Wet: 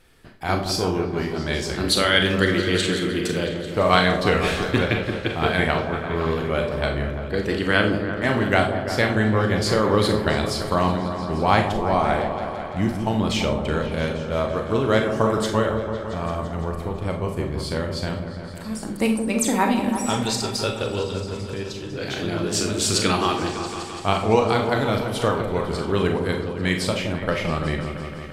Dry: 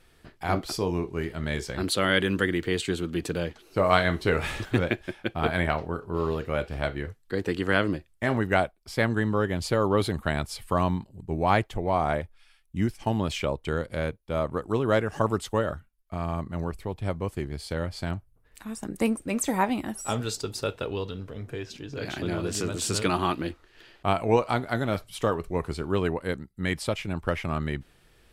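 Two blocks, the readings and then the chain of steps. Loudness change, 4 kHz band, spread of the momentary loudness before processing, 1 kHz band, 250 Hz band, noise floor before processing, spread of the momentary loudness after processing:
+5.5 dB, +9.0 dB, 10 LU, +5.5 dB, +5.5 dB, −61 dBFS, 9 LU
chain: dynamic equaliser 4,500 Hz, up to +6 dB, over −45 dBFS, Q 0.84
echo whose low-pass opens from repeat to repeat 169 ms, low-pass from 750 Hz, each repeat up 1 octave, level −6 dB
four-comb reverb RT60 0.34 s, combs from 29 ms, DRR 4.5 dB
level +2.5 dB

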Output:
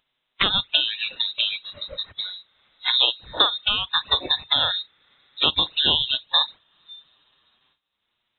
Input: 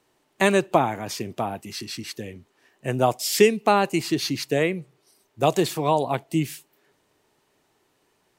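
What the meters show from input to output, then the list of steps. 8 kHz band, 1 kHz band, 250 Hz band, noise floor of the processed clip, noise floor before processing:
below −40 dB, −6.0 dB, −15.0 dB, −77 dBFS, −68 dBFS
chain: compressing power law on the bin magnitudes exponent 0.54
downward compressor 4 to 1, threshold −27 dBFS, peak gain reduction 14.5 dB
dynamic equaliser 1,300 Hz, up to +5 dB, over −50 dBFS, Q 3.3
leveller curve on the samples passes 1
four-comb reverb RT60 3.7 s, combs from 28 ms, DRR 18 dB
flanger swept by the level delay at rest 8.4 ms, full sweep at −22 dBFS
noise gate with hold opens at −55 dBFS
upward compression, threshold −38 dBFS
noise reduction from a noise print of the clip's start 20 dB
voice inversion scrambler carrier 3,900 Hz
level +8 dB

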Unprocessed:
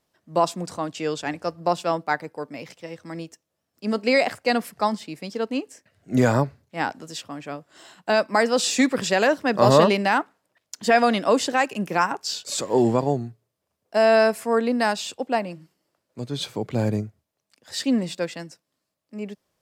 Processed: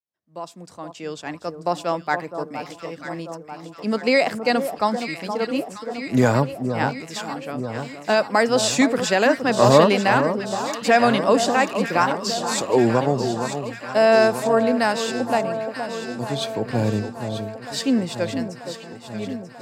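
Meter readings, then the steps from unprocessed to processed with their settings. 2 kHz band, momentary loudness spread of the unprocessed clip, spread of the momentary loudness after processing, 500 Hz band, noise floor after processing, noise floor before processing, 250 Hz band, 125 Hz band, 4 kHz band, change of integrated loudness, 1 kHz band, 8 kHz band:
+2.0 dB, 18 LU, 16 LU, +2.5 dB, −43 dBFS, −80 dBFS, +2.5 dB, +2.5 dB, +2.0 dB, +1.5 dB, +2.0 dB, +2.0 dB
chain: fade in at the beginning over 2.27 s
delay that swaps between a low-pass and a high-pass 469 ms, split 1,200 Hz, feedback 80%, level −8 dB
level +1.5 dB

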